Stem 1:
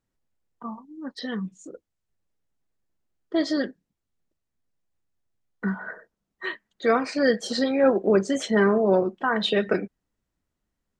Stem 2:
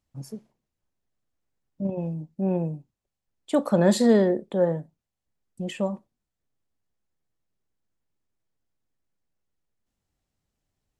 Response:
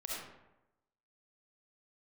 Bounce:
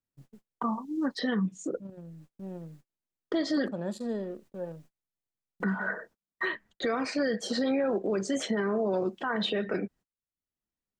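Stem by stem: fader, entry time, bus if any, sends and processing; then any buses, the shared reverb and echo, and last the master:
-1.5 dB, 0.00 s, no send, three-band squash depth 70%
-15.0 dB, 0.00 s, no send, Wiener smoothing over 41 samples; notch 2100 Hz, Q 5.5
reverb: off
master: gate -52 dBFS, range -32 dB; limiter -20.5 dBFS, peak gain reduction 9 dB

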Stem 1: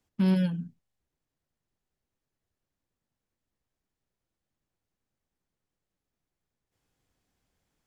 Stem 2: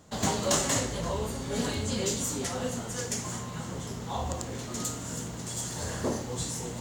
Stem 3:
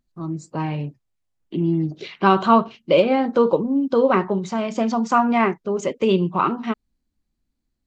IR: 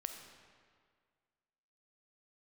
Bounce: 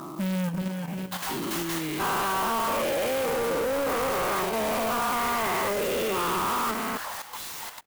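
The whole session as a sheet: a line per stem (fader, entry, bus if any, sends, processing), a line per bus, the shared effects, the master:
-5.5 dB, 0.00 s, no send, echo send -10.5 dB, low shelf 110 Hz +11.5 dB
-10.5 dB, 1.00 s, no send, no echo send, inverse Chebyshev high-pass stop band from 320 Hz, stop band 50 dB
-16.5 dB, 0.00 s, no send, no echo send, spectral dilation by 0.48 s; auto duck -21 dB, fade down 0.45 s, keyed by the first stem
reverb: off
echo: feedback echo 0.362 s, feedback 39%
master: level quantiser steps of 11 dB; overdrive pedal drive 31 dB, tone 4200 Hz, clips at -20.5 dBFS; clock jitter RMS 0.04 ms

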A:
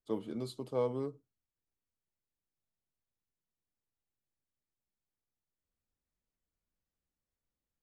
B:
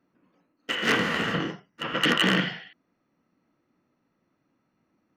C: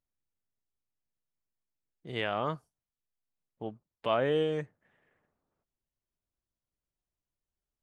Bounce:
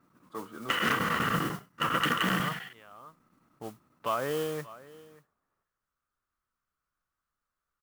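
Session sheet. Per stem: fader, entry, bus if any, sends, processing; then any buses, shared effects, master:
-4.5 dB, 0.25 s, no send, no echo send, bell 1400 Hz +13.5 dB 0.99 oct; soft clip -26 dBFS, distortion -14 dB
+0.5 dB, 0.00 s, no send, no echo send, bell 110 Hz +9 dB 1.6 oct; chopper 10 Hz, duty 90%
-3.5 dB, 0.00 s, no send, echo send -21 dB, dry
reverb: off
echo: echo 0.584 s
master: modulation noise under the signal 14 dB; bell 1200 Hz +11.5 dB 0.67 oct; compressor 6:1, threshold -25 dBFS, peak gain reduction 11.5 dB

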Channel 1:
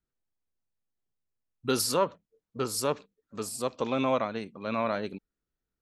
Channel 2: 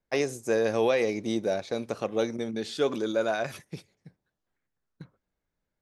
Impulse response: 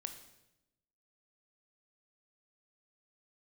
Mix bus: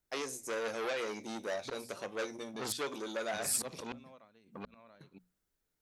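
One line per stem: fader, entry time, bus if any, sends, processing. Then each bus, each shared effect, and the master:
+0.5 dB, 0.00 s, no send, auto swell 0.134 s; flipped gate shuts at -24 dBFS, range -31 dB
-2.5 dB, 0.00 s, send -17.5 dB, low shelf 240 Hz -9 dB; flange 0.5 Hz, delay 9.9 ms, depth 4.8 ms, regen +62%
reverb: on, RT60 0.90 s, pre-delay 19 ms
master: high shelf 4800 Hz +8.5 dB; notches 60/120/180/240 Hz; core saturation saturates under 4000 Hz

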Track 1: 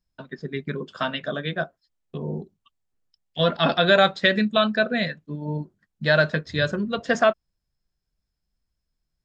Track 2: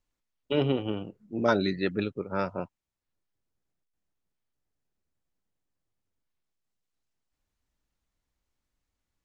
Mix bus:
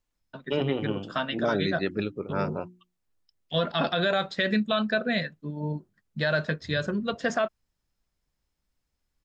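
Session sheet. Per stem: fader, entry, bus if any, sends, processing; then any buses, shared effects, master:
-2.5 dB, 0.15 s, no send, dry
+0.5 dB, 0.00 s, no send, notches 60/120/180/240/300/360 Hz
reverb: off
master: limiter -15 dBFS, peak gain reduction 7.5 dB

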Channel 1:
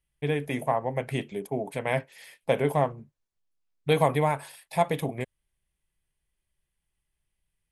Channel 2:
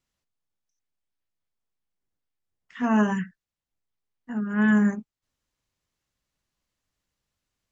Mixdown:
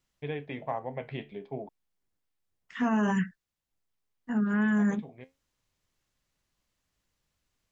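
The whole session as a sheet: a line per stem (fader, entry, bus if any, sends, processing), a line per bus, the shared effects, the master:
-3.0 dB, 0.00 s, muted 1.69–4.46, no send, steep low-pass 4200 Hz; flange 0.33 Hz, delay 7.5 ms, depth 7.5 ms, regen +68%; auto duck -11 dB, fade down 1.15 s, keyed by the second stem
+2.0 dB, 0.00 s, no send, dry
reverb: off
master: limiter -19.5 dBFS, peak gain reduction 10 dB

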